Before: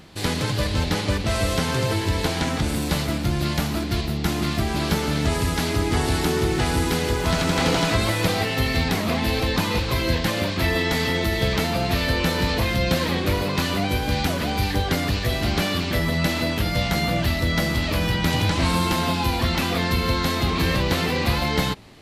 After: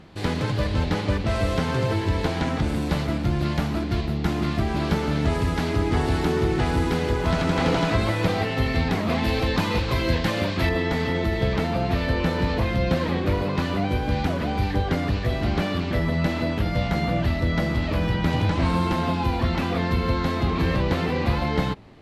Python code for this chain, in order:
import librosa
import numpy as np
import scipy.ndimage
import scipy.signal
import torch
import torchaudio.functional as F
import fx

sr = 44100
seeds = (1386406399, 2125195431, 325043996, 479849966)

y = fx.lowpass(x, sr, hz=fx.steps((0.0, 1900.0), (9.1, 3300.0), (10.69, 1400.0)), slope=6)